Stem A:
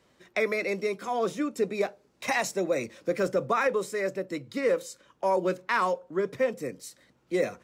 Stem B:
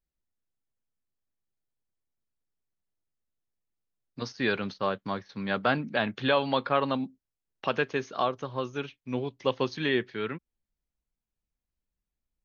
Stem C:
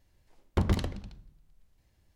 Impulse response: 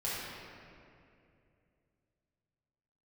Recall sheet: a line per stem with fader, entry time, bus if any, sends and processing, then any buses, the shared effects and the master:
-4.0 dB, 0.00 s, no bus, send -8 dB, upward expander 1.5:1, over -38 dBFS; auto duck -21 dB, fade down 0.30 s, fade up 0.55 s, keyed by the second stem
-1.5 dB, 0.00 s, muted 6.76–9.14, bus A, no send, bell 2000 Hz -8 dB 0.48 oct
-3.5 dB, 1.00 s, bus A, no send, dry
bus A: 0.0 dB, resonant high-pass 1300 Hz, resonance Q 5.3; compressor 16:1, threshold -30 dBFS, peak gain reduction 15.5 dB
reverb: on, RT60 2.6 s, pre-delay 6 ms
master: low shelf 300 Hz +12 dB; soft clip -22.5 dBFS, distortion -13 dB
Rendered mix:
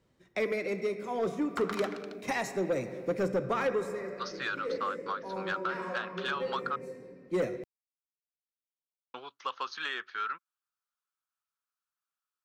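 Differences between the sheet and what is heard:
stem A: send -8 dB -> -14 dB; stem C -3.5 dB -> +4.5 dB

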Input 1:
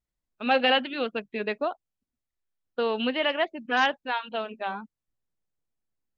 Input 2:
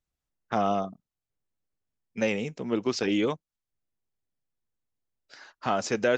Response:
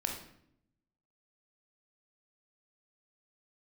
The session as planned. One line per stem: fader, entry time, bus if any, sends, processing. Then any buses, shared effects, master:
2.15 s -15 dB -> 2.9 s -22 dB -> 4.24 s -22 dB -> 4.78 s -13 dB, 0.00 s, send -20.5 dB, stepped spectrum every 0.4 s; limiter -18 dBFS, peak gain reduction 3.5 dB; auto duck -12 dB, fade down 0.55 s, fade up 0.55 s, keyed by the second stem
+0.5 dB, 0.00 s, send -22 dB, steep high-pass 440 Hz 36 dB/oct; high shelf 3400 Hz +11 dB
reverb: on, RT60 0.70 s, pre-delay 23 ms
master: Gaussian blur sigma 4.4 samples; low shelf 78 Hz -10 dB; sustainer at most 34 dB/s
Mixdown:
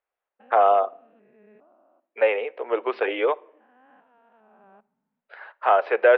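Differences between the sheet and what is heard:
stem 2 +0.5 dB -> +9.5 dB; master: missing sustainer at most 34 dB/s

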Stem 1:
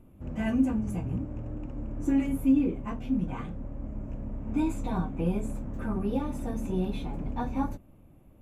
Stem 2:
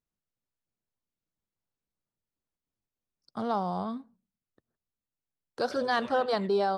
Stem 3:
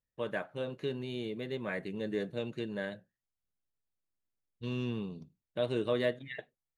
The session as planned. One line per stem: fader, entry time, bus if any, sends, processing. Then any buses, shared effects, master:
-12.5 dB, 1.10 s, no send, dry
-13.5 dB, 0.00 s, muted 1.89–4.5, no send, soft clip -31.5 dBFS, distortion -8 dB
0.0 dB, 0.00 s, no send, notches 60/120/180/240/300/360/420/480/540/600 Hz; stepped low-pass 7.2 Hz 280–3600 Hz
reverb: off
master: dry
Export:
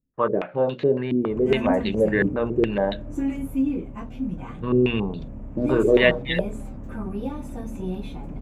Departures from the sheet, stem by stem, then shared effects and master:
stem 1 -12.5 dB -> -0.5 dB; stem 2 -13.5 dB -> -21.0 dB; stem 3 0.0 dB -> +12.0 dB

